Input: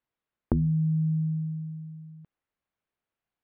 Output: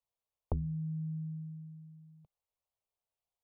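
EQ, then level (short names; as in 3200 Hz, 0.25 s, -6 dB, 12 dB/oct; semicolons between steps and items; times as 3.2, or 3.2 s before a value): bell 180 Hz -10.5 dB 0.31 oct; fixed phaser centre 690 Hz, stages 4; -3.5 dB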